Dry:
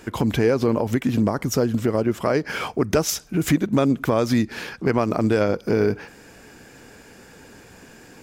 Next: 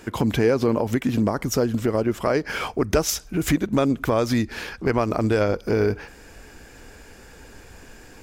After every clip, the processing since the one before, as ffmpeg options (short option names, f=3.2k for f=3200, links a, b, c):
-af "asubboost=boost=6.5:cutoff=60"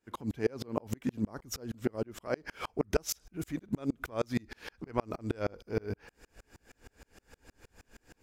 -af "aeval=exprs='val(0)*pow(10,-36*if(lt(mod(-6.4*n/s,1),2*abs(-6.4)/1000),1-mod(-6.4*n/s,1)/(2*abs(-6.4)/1000),(mod(-6.4*n/s,1)-2*abs(-6.4)/1000)/(1-2*abs(-6.4)/1000))/20)':c=same,volume=-4.5dB"